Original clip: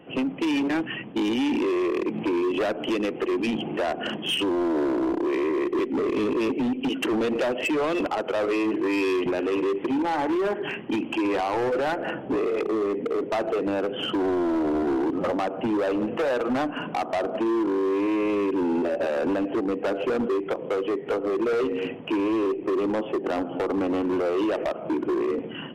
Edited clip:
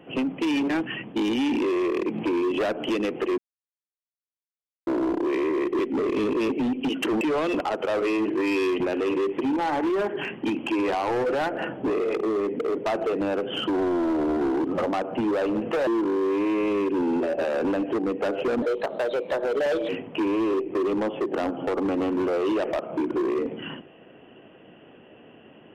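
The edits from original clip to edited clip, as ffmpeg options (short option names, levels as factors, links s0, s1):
-filter_complex "[0:a]asplit=7[s0][s1][s2][s3][s4][s5][s6];[s0]atrim=end=3.38,asetpts=PTS-STARTPTS,afade=t=out:st=3.376:d=0.004:c=hsin[s7];[s1]atrim=start=3.38:end=4.87,asetpts=PTS-STARTPTS,volume=0[s8];[s2]atrim=start=4.87:end=7.212,asetpts=PTS-STARTPTS,afade=t=in:d=0.004:c=hsin[s9];[s3]atrim=start=7.668:end=16.332[s10];[s4]atrim=start=17.488:end=20.244[s11];[s5]atrim=start=20.24:end=21.81,asetpts=PTS-STARTPTS,asetrate=54684,aresample=44100,atrim=end_sample=55836,asetpts=PTS-STARTPTS[s12];[s6]atrim=start=21.806[s13];[s7][s8][s9]concat=n=3:v=0:a=1[s14];[s14][s10]acrossfade=d=0.004:c1=hsin:c2=hsin[s15];[s15][s11]acrossfade=d=0.004:c1=hsin:c2=hsin[s16];[s16][s12]acrossfade=d=0.004:c1=hsin:c2=hsin[s17];[s17][s13]acrossfade=d=0.004:c1=hsin:c2=hsin"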